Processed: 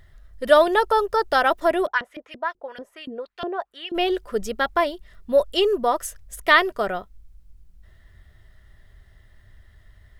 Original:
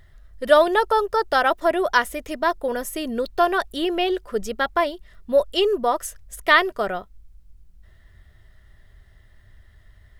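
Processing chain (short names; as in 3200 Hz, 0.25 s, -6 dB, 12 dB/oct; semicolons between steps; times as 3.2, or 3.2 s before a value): 1.85–3.94 LFO band-pass saw up 7.5 Hz -> 1.7 Hz 290–3400 Hz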